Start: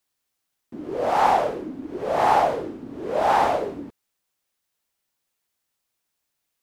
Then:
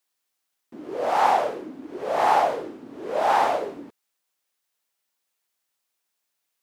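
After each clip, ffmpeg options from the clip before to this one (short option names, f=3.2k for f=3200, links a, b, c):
-af "highpass=f=390:p=1"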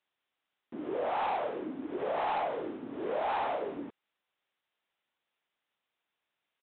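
-af "aresample=8000,asoftclip=type=tanh:threshold=-17dB,aresample=44100,acompressor=threshold=-31dB:ratio=4"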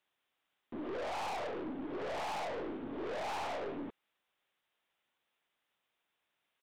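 -af "aeval=exprs='(tanh(100*val(0)+0.3)-tanh(0.3))/100':c=same,volume=3dB"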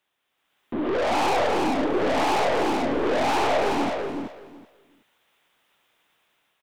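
-filter_complex "[0:a]dynaudnorm=f=210:g=5:m=9dB,asplit=2[a][b];[b]aecho=0:1:375|750|1125:0.596|0.107|0.0193[c];[a][c]amix=inputs=2:normalize=0,volume=6dB"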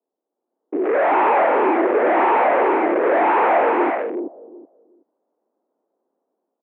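-filter_complex "[0:a]acrossover=split=600[a][b];[b]acrusher=bits=4:mix=0:aa=0.5[c];[a][c]amix=inputs=2:normalize=0,highpass=f=170:t=q:w=0.5412,highpass=f=170:t=q:w=1.307,lowpass=f=2.2k:t=q:w=0.5176,lowpass=f=2.2k:t=q:w=0.7071,lowpass=f=2.2k:t=q:w=1.932,afreqshift=66,volume=6.5dB"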